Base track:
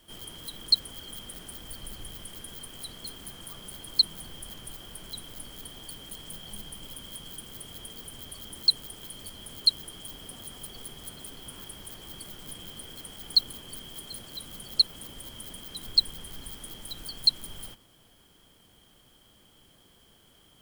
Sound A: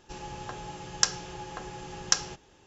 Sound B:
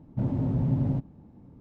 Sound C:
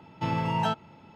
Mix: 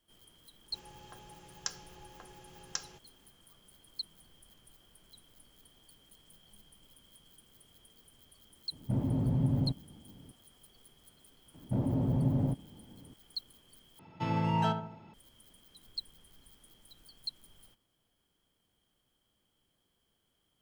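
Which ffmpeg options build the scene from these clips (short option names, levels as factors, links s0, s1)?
-filter_complex "[2:a]asplit=2[s0][s1];[0:a]volume=0.126[s2];[s1]equalizer=f=580:w=0.61:g=4.5[s3];[3:a]asplit=2[s4][s5];[s5]adelay=73,lowpass=f=1300:p=1,volume=0.473,asplit=2[s6][s7];[s7]adelay=73,lowpass=f=1300:p=1,volume=0.49,asplit=2[s8][s9];[s9]adelay=73,lowpass=f=1300:p=1,volume=0.49,asplit=2[s10][s11];[s11]adelay=73,lowpass=f=1300:p=1,volume=0.49,asplit=2[s12][s13];[s13]adelay=73,lowpass=f=1300:p=1,volume=0.49,asplit=2[s14][s15];[s15]adelay=73,lowpass=f=1300:p=1,volume=0.49[s16];[s4][s6][s8][s10][s12][s14][s16]amix=inputs=7:normalize=0[s17];[s2]asplit=2[s18][s19];[s18]atrim=end=13.994[s20];[s17]atrim=end=1.15,asetpts=PTS-STARTPTS,volume=0.562[s21];[s19]atrim=start=15.136[s22];[1:a]atrim=end=2.66,asetpts=PTS-STARTPTS,volume=0.211,afade=t=in:d=0.004:c=hsin,afade=t=out:st=2.656:d=0.004:c=hsin,adelay=630[s23];[s0]atrim=end=1.6,asetpts=PTS-STARTPTS,volume=0.668,afade=t=in:d=0.004:c=hsin,afade=t=out:st=1.596:d=0.004:c=hsin,adelay=8720[s24];[s3]atrim=end=1.6,asetpts=PTS-STARTPTS,volume=0.596,afade=t=in:d=0.004:c=hsin,afade=t=out:st=1.596:d=0.004:c=hsin,adelay=508914S[s25];[s20][s21]acrossfade=d=0.004:c1=hsin:c2=hsin[s26];[s26][s22]acrossfade=d=0.004:c1=hsin:c2=hsin[s27];[s27][s23][s24][s25]amix=inputs=4:normalize=0"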